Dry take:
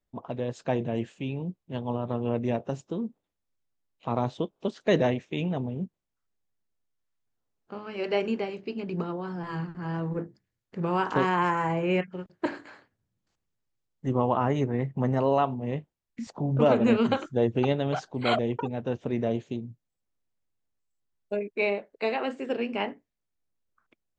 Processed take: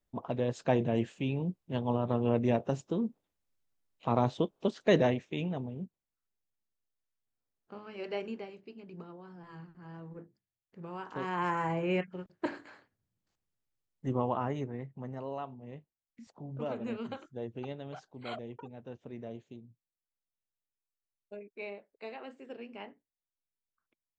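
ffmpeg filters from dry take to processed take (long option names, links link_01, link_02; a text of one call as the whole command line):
ffmpeg -i in.wav -af "volume=10.5dB,afade=type=out:start_time=4.57:duration=1.14:silence=0.421697,afade=type=out:start_time=7.77:duration=1:silence=0.398107,afade=type=in:start_time=11.14:duration=0.41:silence=0.298538,afade=type=out:start_time=14.08:duration=0.87:silence=0.298538" out.wav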